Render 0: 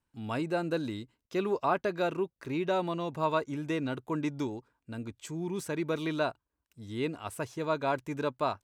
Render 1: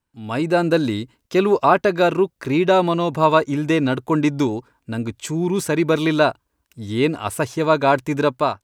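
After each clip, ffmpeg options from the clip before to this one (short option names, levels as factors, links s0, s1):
-af "dynaudnorm=f=150:g=5:m=3.55,volume=1.41"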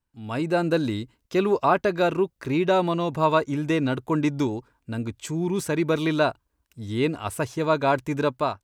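-af "lowshelf=f=65:g=10,volume=0.531"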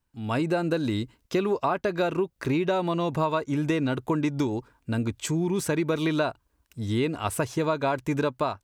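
-af "acompressor=threshold=0.0501:ratio=6,volume=1.58"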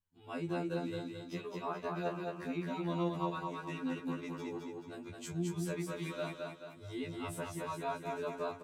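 -af "flanger=delay=9.6:depth=2.5:regen=-55:speed=1.4:shape=triangular,aecho=1:1:216|432|648|864|1080|1296:0.708|0.319|0.143|0.0645|0.029|0.0131,afftfilt=real='re*2*eq(mod(b,4),0)':imag='im*2*eq(mod(b,4),0)':win_size=2048:overlap=0.75,volume=0.398"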